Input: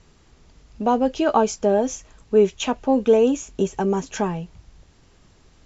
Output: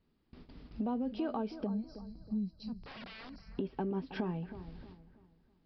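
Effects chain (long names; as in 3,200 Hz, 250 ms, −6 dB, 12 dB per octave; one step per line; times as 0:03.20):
0:01.67–0:03.58: gain on a spectral selection 220–3,900 Hz −29 dB
noise gate with hold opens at −41 dBFS
parametric band 250 Hz +11 dB 1.1 octaves
brickwall limiter −10.5 dBFS, peak gain reduction 7.5 dB
downward compressor 3 to 1, threshold −35 dBFS, peak gain reduction 15.5 dB
0:02.76–0:03.30: wrap-around overflow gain 40.5 dB
on a send: bucket-brigade delay 320 ms, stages 4,096, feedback 35%, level −12.5 dB
on the sum: downsampling to 11,025 Hz
level −3 dB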